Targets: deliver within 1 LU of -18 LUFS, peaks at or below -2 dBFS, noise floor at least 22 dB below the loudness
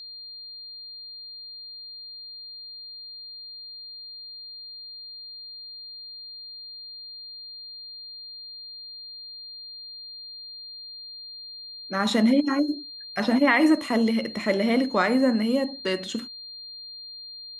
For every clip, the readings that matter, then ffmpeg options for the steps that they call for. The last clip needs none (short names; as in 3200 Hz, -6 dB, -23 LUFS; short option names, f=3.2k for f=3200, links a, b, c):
steady tone 4200 Hz; tone level -38 dBFS; loudness -28.5 LUFS; peak -7.0 dBFS; loudness target -18.0 LUFS
-> -af "bandreject=f=4.2k:w=30"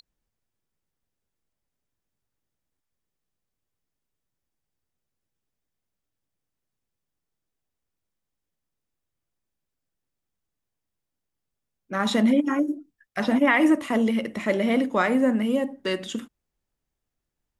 steady tone none; loudness -23.0 LUFS; peak -7.5 dBFS; loudness target -18.0 LUFS
-> -af "volume=5dB"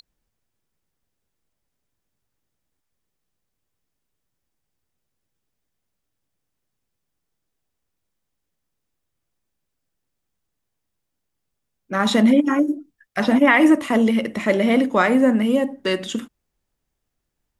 loudness -18.0 LUFS; peak -2.5 dBFS; noise floor -79 dBFS